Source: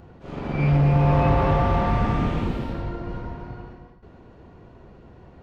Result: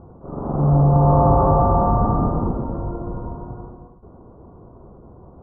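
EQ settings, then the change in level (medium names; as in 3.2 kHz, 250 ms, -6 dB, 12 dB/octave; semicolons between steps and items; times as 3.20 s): elliptic low-pass 1.2 kHz, stop band 50 dB; dynamic bell 780 Hz, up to +4 dB, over -39 dBFS, Q 2; +4.0 dB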